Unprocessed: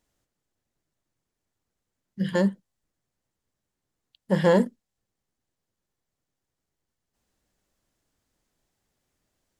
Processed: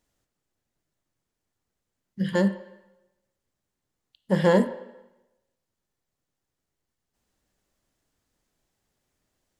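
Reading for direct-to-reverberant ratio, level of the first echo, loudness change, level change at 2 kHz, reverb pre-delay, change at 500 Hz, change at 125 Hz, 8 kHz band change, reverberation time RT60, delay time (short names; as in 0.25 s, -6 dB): 9.5 dB, none, 0.0 dB, +1.0 dB, 7 ms, 0.0 dB, +0.5 dB, n/a, 0.95 s, none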